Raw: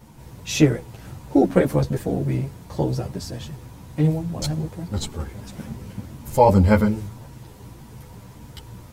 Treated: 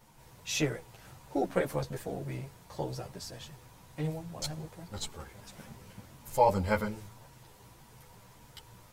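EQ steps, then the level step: peaking EQ 71 Hz -11 dB 1.7 oct; peaking EQ 260 Hz -9.5 dB 1.5 oct; -6.5 dB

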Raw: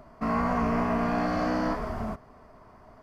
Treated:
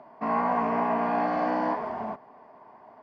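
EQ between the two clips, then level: band-pass 250–3000 Hz; peaking EQ 860 Hz +9 dB 0.46 oct; band-stop 1.3 kHz, Q 6.4; 0.0 dB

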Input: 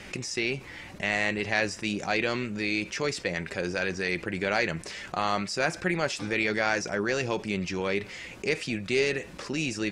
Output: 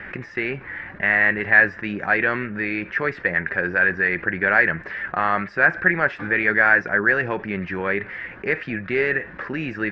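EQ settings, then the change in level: resonant low-pass 1.7 kHz, resonance Q 5.4; distance through air 87 m; +3.0 dB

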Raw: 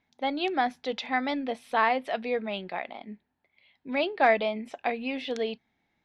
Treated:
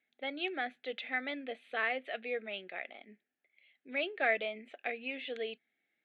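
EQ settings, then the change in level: band-pass 440–4400 Hz; static phaser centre 2.3 kHz, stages 4; -2.5 dB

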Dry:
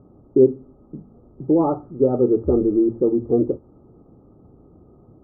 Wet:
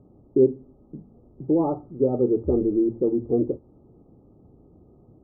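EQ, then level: low-pass 1.1 kHz 24 dB/octave; distance through air 420 m; -3.0 dB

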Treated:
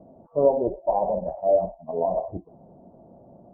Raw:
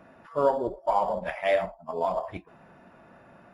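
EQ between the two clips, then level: steep low-pass 750 Hz 36 dB/octave; +5.0 dB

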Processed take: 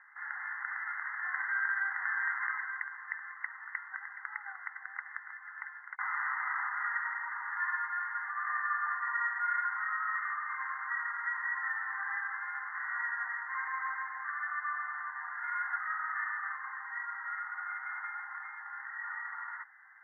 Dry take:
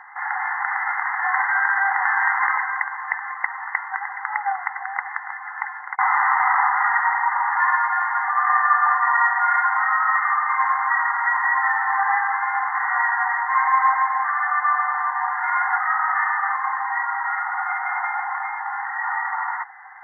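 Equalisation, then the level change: ladder high-pass 1.3 kHz, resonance 50%; distance through air 460 m; -5.5 dB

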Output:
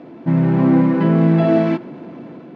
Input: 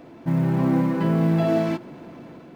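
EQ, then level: dynamic bell 1.9 kHz, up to +3 dB, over -41 dBFS, Q 0.91; band-pass 200–4000 Hz; bass shelf 370 Hz +10 dB; +2.5 dB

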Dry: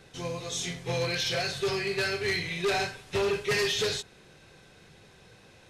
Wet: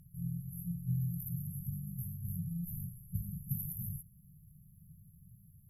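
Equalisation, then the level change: brick-wall FIR band-stop 200–11000 Hz; treble shelf 5.6 kHz +11.5 dB; +2.0 dB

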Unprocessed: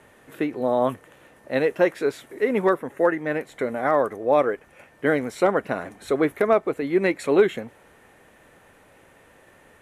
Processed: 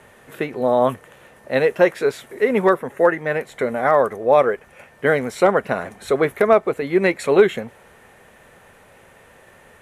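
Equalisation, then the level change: peaking EQ 300 Hz -12 dB 0.22 oct; +5.0 dB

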